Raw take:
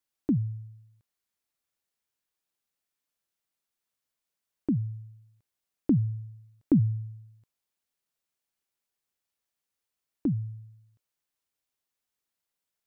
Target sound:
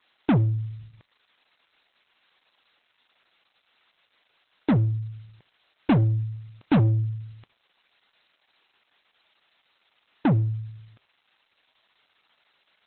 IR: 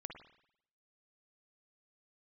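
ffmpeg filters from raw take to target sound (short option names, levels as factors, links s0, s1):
-filter_complex "[0:a]asplit=2[s0][s1];[s1]highpass=f=720:p=1,volume=50.1,asoftclip=type=tanh:threshold=0.224[s2];[s0][s2]amix=inputs=2:normalize=0,lowpass=f=1100:p=1,volume=0.501,crystalizer=i=6.5:c=0,asplit=2[s3][s4];[1:a]atrim=start_sample=2205,asetrate=70560,aresample=44100[s5];[s4][s5]afir=irnorm=-1:irlink=0,volume=0.398[s6];[s3][s6]amix=inputs=2:normalize=0" -ar 48000 -c:a libopus -b:a 8k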